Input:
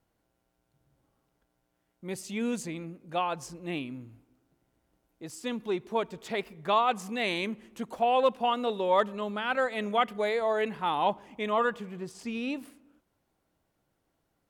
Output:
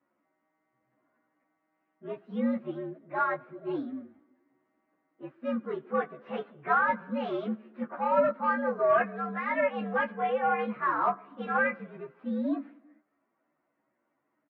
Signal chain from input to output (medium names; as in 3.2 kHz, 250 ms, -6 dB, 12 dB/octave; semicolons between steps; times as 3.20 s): frequency axis rescaled in octaves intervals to 118%; overdrive pedal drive 14 dB, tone 1 kHz, clips at -14.5 dBFS; cabinet simulation 250–2200 Hz, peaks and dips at 250 Hz +7 dB, 440 Hz -8 dB, 840 Hz -8 dB; doubling 14 ms -5 dB; trim +3 dB